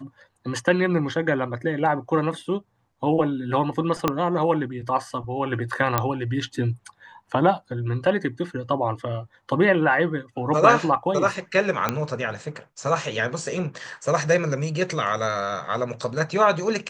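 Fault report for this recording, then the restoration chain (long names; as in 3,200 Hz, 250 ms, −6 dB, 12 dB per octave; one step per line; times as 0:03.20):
0:04.08: click −6 dBFS
0:05.98: click −5 dBFS
0:11.89: click −7 dBFS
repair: click removal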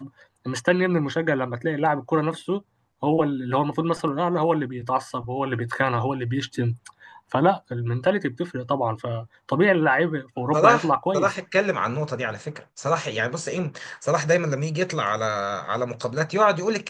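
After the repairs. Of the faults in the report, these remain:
0:04.08: click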